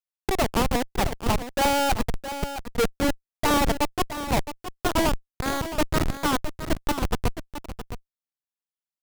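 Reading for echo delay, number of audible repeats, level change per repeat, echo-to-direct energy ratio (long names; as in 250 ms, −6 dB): 666 ms, 1, repeats not evenly spaced, −11.0 dB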